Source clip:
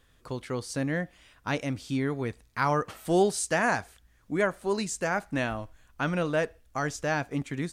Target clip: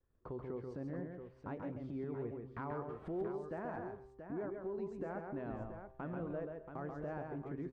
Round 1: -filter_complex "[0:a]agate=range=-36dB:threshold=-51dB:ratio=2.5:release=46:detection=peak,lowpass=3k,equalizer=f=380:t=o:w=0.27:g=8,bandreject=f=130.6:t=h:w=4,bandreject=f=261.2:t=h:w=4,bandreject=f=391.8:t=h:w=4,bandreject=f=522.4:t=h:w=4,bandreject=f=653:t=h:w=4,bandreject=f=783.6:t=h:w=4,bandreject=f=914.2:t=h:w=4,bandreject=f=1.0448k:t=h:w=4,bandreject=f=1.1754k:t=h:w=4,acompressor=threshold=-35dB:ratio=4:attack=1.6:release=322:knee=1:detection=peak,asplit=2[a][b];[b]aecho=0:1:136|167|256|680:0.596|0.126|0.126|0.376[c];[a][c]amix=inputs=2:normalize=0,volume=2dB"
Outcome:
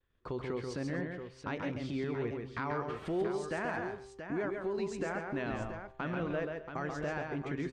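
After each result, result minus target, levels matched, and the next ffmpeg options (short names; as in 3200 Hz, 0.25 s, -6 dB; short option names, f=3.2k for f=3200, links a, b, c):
4000 Hz band +16.5 dB; compressor: peak gain reduction -6 dB
-filter_complex "[0:a]agate=range=-36dB:threshold=-51dB:ratio=2.5:release=46:detection=peak,lowpass=960,equalizer=f=380:t=o:w=0.27:g=8,bandreject=f=130.6:t=h:w=4,bandreject=f=261.2:t=h:w=4,bandreject=f=391.8:t=h:w=4,bandreject=f=522.4:t=h:w=4,bandreject=f=653:t=h:w=4,bandreject=f=783.6:t=h:w=4,bandreject=f=914.2:t=h:w=4,bandreject=f=1.0448k:t=h:w=4,bandreject=f=1.1754k:t=h:w=4,acompressor=threshold=-35dB:ratio=4:attack=1.6:release=322:knee=1:detection=peak,asplit=2[a][b];[b]aecho=0:1:136|167|256|680:0.596|0.126|0.126|0.376[c];[a][c]amix=inputs=2:normalize=0,volume=2dB"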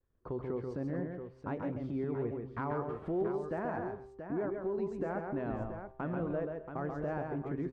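compressor: peak gain reduction -6.5 dB
-filter_complex "[0:a]agate=range=-36dB:threshold=-51dB:ratio=2.5:release=46:detection=peak,lowpass=960,equalizer=f=380:t=o:w=0.27:g=8,bandreject=f=130.6:t=h:w=4,bandreject=f=261.2:t=h:w=4,bandreject=f=391.8:t=h:w=4,bandreject=f=522.4:t=h:w=4,bandreject=f=653:t=h:w=4,bandreject=f=783.6:t=h:w=4,bandreject=f=914.2:t=h:w=4,bandreject=f=1.0448k:t=h:w=4,bandreject=f=1.1754k:t=h:w=4,acompressor=threshold=-43.5dB:ratio=4:attack=1.6:release=322:knee=1:detection=peak,asplit=2[a][b];[b]aecho=0:1:136|167|256|680:0.596|0.126|0.126|0.376[c];[a][c]amix=inputs=2:normalize=0,volume=2dB"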